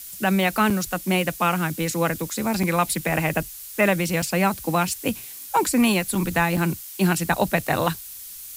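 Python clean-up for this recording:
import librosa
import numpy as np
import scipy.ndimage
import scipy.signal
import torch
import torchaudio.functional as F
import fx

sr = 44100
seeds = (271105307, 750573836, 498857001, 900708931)

y = fx.fix_interpolate(x, sr, at_s=(0.7, 2.63, 4.22, 6.15, 6.57), length_ms=4.5)
y = fx.noise_reduce(y, sr, print_start_s=8.0, print_end_s=8.5, reduce_db=29.0)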